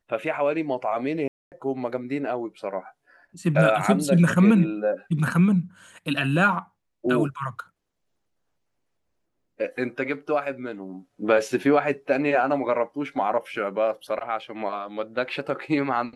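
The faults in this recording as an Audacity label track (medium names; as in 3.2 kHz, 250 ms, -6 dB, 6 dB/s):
1.280000	1.520000	dropout 238 ms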